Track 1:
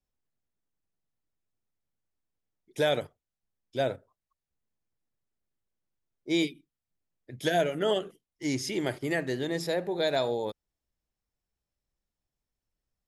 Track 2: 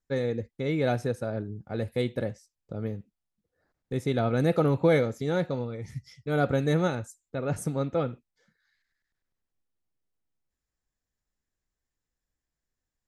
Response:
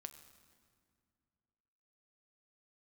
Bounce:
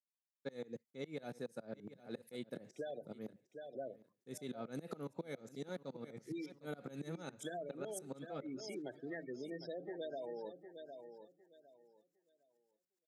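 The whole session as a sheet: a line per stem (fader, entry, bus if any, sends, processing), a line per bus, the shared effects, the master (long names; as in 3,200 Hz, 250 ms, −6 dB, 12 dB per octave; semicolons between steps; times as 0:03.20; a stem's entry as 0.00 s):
−12.0 dB, 0.00 s, no send, echo send −12 dB, low-pass filter 6,500 Hz 12 dB per octave; gate on every frequency bin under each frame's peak −15 dB strong
−5.5 dB, 0.35 s, no send, echo send −20.5 dB, bass and treble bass +3 dB, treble +9 dB; tremolo with a ramp in dB swelling 7.2 Hz, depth 27 dB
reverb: not used
echo: repeating echo 757 ms, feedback 23%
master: high-pass filter 170 Hz 24 dB per octave; downward compressor 12 to 1, threshold −40 dBFS, peak gain reduction 15.5 dB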